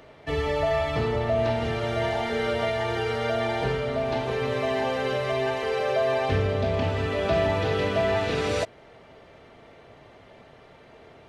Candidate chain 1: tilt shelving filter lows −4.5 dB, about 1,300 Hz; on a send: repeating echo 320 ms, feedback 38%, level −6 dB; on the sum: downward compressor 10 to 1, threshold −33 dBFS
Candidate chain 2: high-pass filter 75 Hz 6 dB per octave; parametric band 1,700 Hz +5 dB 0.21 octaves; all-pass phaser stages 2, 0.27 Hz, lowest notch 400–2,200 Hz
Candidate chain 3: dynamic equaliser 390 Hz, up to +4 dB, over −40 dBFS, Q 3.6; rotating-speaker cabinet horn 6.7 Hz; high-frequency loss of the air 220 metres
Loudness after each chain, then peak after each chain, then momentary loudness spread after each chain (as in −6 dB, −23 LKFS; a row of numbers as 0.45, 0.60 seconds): −36.0, −29.5, −28.0 LKFS; −24.0, −15.5, −12.5 dBFS; 14, 5, 3 LU